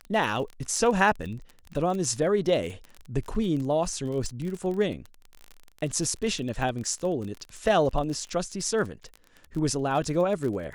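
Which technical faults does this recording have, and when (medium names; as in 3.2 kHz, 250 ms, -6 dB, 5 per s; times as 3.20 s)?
crackle 32 per s -32 dBFS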